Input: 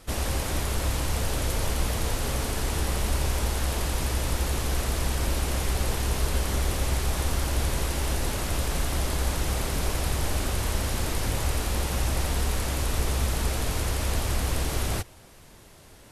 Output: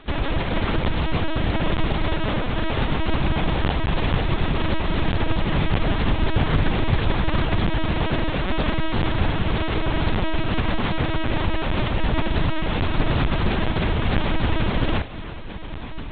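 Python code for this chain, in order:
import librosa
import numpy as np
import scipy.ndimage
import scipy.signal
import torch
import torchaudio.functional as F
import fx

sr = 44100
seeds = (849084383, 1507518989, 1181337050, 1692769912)

y = fx.echo_diffused(x, sr, ms=1449, feedback_pct=62, wet_db=-14)
y = fx.lpc_vocoder(y, sr, seeds[0], excitation='pitch_kept', order=10)
y = fx.doppler_dist(y, sr, depth_ms=0.19)
y = y * librosa.db_to_amplitude(5.5)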